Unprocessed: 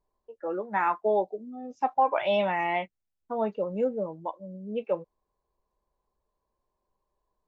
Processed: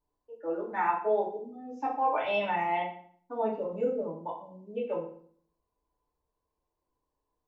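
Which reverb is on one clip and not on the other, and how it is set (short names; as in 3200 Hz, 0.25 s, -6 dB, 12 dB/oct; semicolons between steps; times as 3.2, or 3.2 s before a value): FDN reverb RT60 0.54 s, low-frequency decay 1.35×, high-frequency decay 0.85×, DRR -4.5 dB; gain -8.5 dB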